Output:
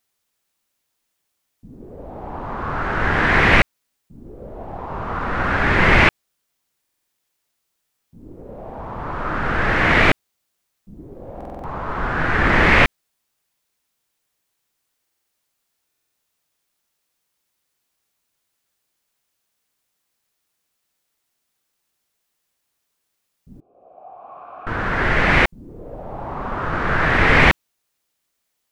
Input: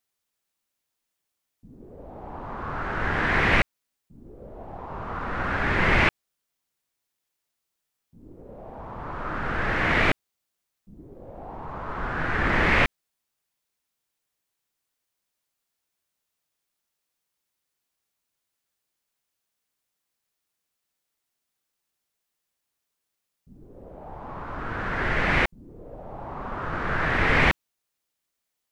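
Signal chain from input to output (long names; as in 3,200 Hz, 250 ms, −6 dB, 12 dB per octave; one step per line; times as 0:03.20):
0:23.60–0:24.67: formant filter a
buffer that repeats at 0:06.80/0:11.36/0:15.02/0:15.86, samples 2,048, times 5
level +7 dB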